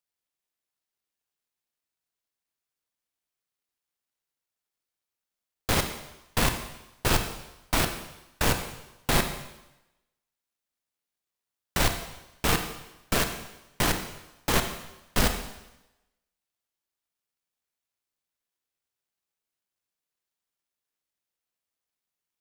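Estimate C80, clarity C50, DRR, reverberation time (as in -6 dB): 10.5 dB, 8.0 dB, 6.0 dB, 0.95 s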